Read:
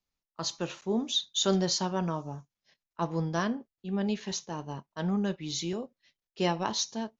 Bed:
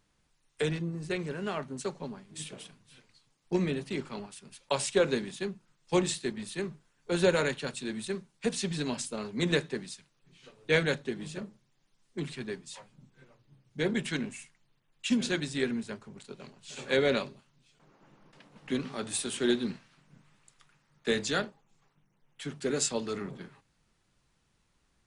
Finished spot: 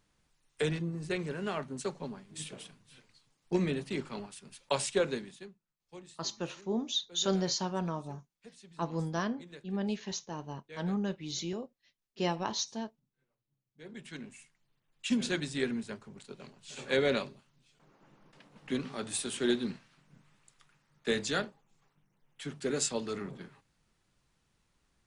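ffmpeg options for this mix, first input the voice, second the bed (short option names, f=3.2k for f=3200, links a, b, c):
-filter_complex "[0:a]adelay=5800,volume=-3.5dB[a];[1:a]volume=20dB,afade=t=out:st=4.77:d=0.81:silence=0.0794328,afade=t=in:st=13.79:d=1.4:silence=0.0891251[b];[a][b]amix=inputs=2:normalize=0"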